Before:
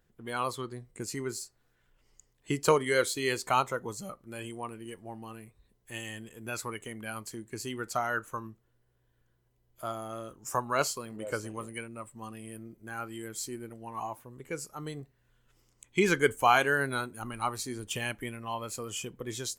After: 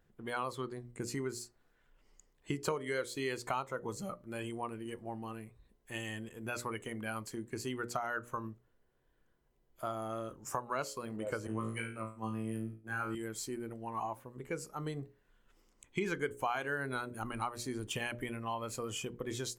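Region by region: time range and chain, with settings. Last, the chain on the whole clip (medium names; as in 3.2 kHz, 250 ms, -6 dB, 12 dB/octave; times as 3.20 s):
11.47–13.15 s: expander -43 dBFS + flutter echo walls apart 3.1 m, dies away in 0.38 s + three bands expanded up and down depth 40%
whole clip: treble shelf 3.1 kHz -7.5 dB; hum notches 60/120/180/240/300/360/420/480/540/600 Hz; compression 4:1, threshold -35 dBFS; trim +1.5 dB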